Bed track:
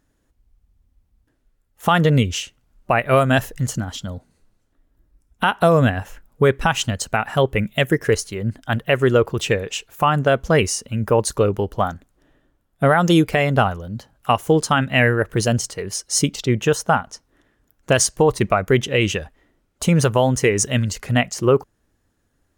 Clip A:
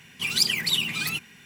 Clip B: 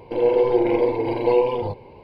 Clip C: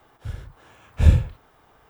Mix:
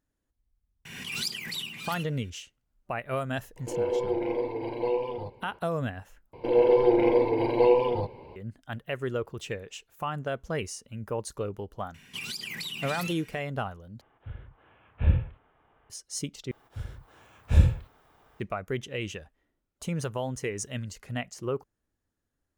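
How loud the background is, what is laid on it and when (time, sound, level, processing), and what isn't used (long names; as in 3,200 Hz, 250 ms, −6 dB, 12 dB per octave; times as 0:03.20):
bed track −15.5 dB
0:00.85: mix in A −12 dB + background raised ahead of every attack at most 41 dB per second
0:03.56: mix in B −10 dB
0:06.33: overwrite with B −2.5 dB
0:11.94: mix in A −4 dB + downward compressor 16 to 1, threshold −28 dBFS
0:14.01: overwrite with C −8 dB + Butterworth low-pass 3,200 Hz 48 dB per octave
0:16.51: overwrite with C −4.5 dB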